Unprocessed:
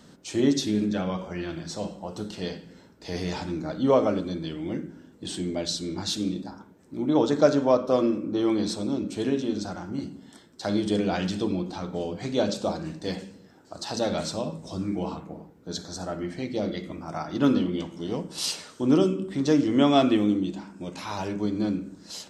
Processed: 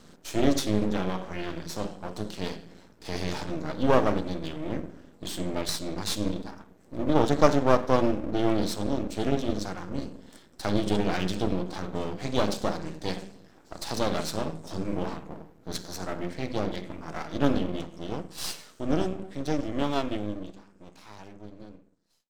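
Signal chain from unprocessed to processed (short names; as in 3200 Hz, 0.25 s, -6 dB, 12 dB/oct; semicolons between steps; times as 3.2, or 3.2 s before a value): ending faded out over 6.07 s; half-wave rectifier; gain +3 dB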